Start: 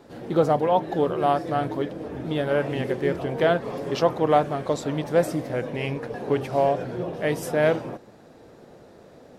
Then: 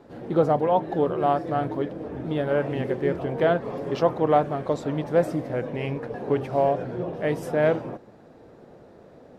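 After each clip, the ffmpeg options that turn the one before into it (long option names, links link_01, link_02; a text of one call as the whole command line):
ffmpeg -i in.wav -af "highshelf=frequency=2900:gain=-10.5" out.wav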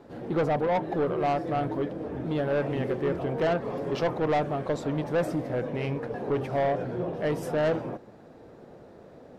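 ffmpeg -i in.wav -af "asoftclip=type=tanh:threshold=-20.5dB" out.wav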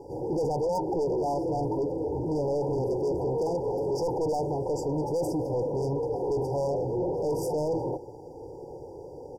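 ffmpeg -i in.wav -af "aecho=1:1:2.3:0.9,asoftclip=type=tanh:threshold=-29dB,afftfilt=real='re*(1-between(b*sr/4096,1000,4600))':imag='im*(1-between(b*sr/4096,1000,4600))':win_size=4096:overlap=0.75,volume=4.5dB" out.wav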